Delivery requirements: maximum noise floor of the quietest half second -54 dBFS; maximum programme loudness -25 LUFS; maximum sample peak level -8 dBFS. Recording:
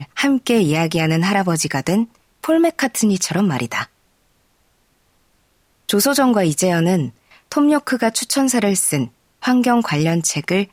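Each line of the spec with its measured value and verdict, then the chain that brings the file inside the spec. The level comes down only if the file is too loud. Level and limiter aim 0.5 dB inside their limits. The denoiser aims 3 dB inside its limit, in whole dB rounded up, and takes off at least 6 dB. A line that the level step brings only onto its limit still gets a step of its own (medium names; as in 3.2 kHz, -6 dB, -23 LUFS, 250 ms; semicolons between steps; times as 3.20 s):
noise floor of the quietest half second -61 dBFS: pass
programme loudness -17.5 LUFS: fail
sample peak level -6.0 dBFS: fail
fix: trim -8 dB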